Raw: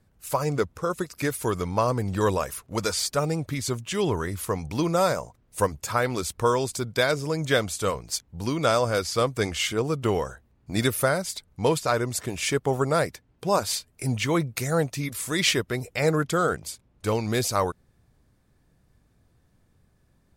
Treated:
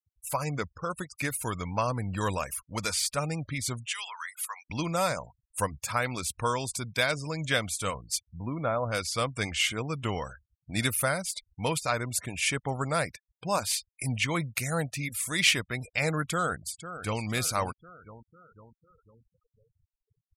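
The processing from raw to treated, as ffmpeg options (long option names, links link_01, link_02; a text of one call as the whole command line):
ffmpeg -i in.wav -filter_complex "[0:a]asettb=1/sr,asplit=3[link_01][link_02][link_03];[link_01]atrim=end=3.864[link_04];[link_02]atrim=start=3.86:end=4.7,asetpts=PTS-STARTPTS,afade=type=in:duration=0.004:curve=qsin,afade=type=out:start_time=0.836:duration=0.004:curve=qsin,highpass=frequency=1000:width=0.5412,highpass=frequency=1000:width=1.3066[link_05];[link_03]atrim=start=4.696[link_06];[link_04][link_05]acrossfade=duration=0.004:curve1=hsin:curve2=qsin[link_07];[link_07][link_06]acrossfade=duration=0.004:curve1=qsin:curve2=hsin,asettb=1/sr,asplit=3[link_08][link_09][link_10];[link_08]atrim=end=8.294[link_11];[link_09]atrim=start=8.29:end=8.92,asetpts=PTS-STARTPTS,afade=type=in:duration=0.004:curve=qsin,afade=type=out:start_time=0.626:duration=0.004:curve=qsin,lowpass=1200[link_12];[link_10]atrim=start=8.916[link_13];[link_11][link_12]acrossfade=duration=0.004:curve1=hsin:curve2=qsin[link_14];[link_14][link_13]acrossfade=duration=0.004:curve1=qsin:curve2=hsin,asplit=2[link_15][link_16];[link_16]afade=type=in:start_time=16.26:duration=0.01,afade=type=out:start_time=17.22:duration=0.01,aecho=0:1:500|1000|1500|2000|2500|3000:0.266073|0.14634|0.0804869|0.0442678|0.0243473|0.013391[link_17];[link_15][link_17]amix=inputs=2:normalize=0,afftfilt=real='re*gte(hypot(re,im),0.00891)':imag='im*gte(hypot(re,im),0.00891)':win_size=1024:overlap=0.75,equalizer=frequency=400:width_type=o:width=0.67:gain=-9,equalizer=frequency=2500:width_type=o:width=0.67:gain=7,equalizer=frequency=10000:width_type=o:width=0.67:gain=6,volume=-4dB" out.wav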